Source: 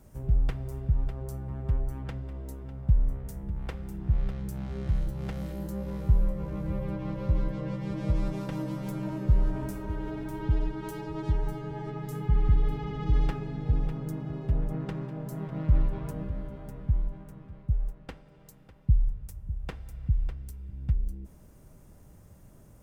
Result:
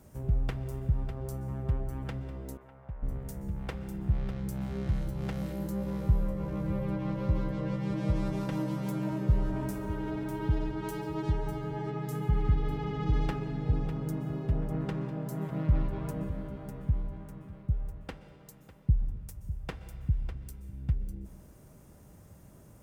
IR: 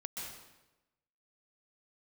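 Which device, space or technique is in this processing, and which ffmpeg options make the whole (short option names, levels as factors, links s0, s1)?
saturated reverb return: -filter_complex "[0:a]highpass=f=73:p=1,asplit=2[s0][s1];[1:a]atrim=start_sample=2205[s2];[s1][s2]afir=irnorm=-1:irlink=0,asoftclip=type=tanh:threshold=0.0398,volume=0.299[s3];[s0][s3]amix=inputs=2:normalize=0,asettb=1/sr,asplit=3[s4][s5][s6];[s4]atrim=end=2.574[s7];[s5]atrim=start=2.57:end=3.03,asetpts=PTS-STARTPTS,afade=t=in:d=0.004:c=qsin,afade=t=out:st=0.456:d=0.004:c=qsin,acrossover=split=570 2600:gain=0.158 1 0.141[s8][s9][s10];[s8][s9][s10]amix=inputs=3:normalize=0[s11];[s6]atrim=start=3.026[s12];[s7][s11]acrossfade=d=0.004:c1=hsin:c2=qsin[s13];[s13][s12]acrossfade=d=0.004:c1=qsin:c2=hsin"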